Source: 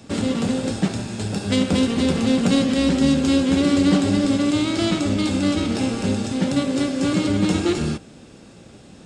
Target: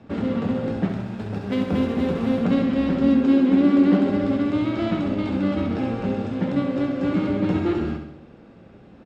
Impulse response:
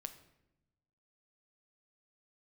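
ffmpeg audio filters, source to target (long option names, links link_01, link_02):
-filter_complex "[0:a]lowpass=1900,bandreject=frequency=50:width_type=h:width=6,bandreject=frequency=100:width_type=h:width=6,bandreject=frequency=150:width_type=h:width=6,asettb=1/sr,asplit=3[link_01][link_02][link_03];[link_01]atrim=end=0.894[link_04];[link_02]atrim=start=0.89:end=2.44,asetpts=PTS-STARTPTS,afade=type=in:duration=0.004:curve=qsin,afade=type=out:start_time=1.546:duration=0.004:curve=qsin,aeval=exprs='sgn(val(0))*max(abs(val(0))-0.00944,0)':channel_layout=same[link_05];[link_03]atrim=start=2.436[link_06];[link_04][link_05]acrossfade=duration=0.004:curve1=hsin:curve2=qsin[link_07];[link_07][link_06]acrossfade=duration=0.004:curve1=qsin:curve2=hsin,asettb=1/sr,asplit=3[link_08][link_09][link_10];[link_08]atrim=end=3.064[link_11];[link_09]atrim=start=3.06:end=4.1,asetpts=PTS-STARTPTS,afade=type=in:duration=0.004:curve=qsin,afade=type=out:start_time=1.036:duration=0.004:curve=qsin,lowshelf=frequency=170:width_type=q:width=3:gain=-8.5[link_12];[link_10]atrim=start=4.096[link_13];[link_11][link_12]acrossfade=duration=0.004:curve1=hsin:curve2=qsin[link_14];[link_14][link_13]acrossfade=duration=0.004:curve1=qsin:curve2=hsin,aecho=1:1:67|134|201|268|335|402|469:0.422|0.236|0.132|0.0741|0.0415|0.0232|0.013,volume=-2.5dB"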